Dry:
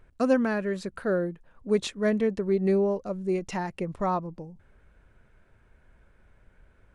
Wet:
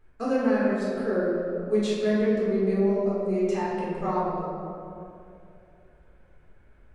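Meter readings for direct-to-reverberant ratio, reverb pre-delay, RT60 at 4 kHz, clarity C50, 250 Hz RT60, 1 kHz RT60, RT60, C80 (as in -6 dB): -7.5 dB, 3 ms, 1.3 s, -2.0 dB, 2.7 s, 2.3 s, 2.7 s, 0.0 dB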